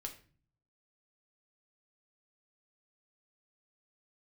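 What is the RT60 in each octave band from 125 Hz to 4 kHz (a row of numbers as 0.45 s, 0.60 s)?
0.95 s, 0.75 s, 0.45 s, 0.35 s, 0.40 s, 0.35 s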